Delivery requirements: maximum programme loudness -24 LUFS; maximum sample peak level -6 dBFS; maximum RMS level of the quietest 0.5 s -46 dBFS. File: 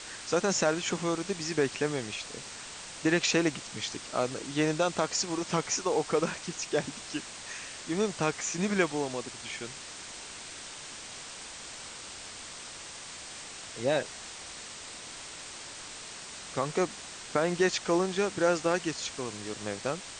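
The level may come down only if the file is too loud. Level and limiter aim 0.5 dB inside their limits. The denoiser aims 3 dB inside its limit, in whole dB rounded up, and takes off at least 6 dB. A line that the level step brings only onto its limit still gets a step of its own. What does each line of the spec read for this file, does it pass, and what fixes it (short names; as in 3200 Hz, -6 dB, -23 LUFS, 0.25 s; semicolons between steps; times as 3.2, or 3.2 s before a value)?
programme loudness -32.0 LUFS: OK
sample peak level -11.5 dBFS: OK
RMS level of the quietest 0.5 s -44 dBFS: fail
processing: denoiser 6 dB, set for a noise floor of -44 dBFS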